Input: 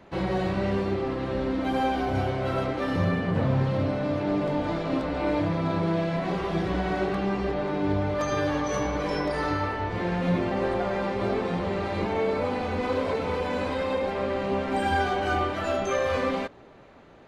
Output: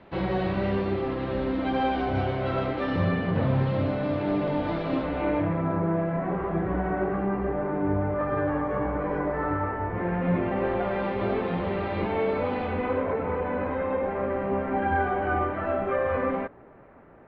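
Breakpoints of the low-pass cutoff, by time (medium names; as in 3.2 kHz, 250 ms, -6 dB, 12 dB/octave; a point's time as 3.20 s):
low-pass 24 dB/octave
4.95 s 4 kHz
5.77 s 1.8 kHz
9.82 s 1.8 kHz
11.03 s 3.4 kHz
12.62 s 3.4 kHz
13.10 s 2 kHz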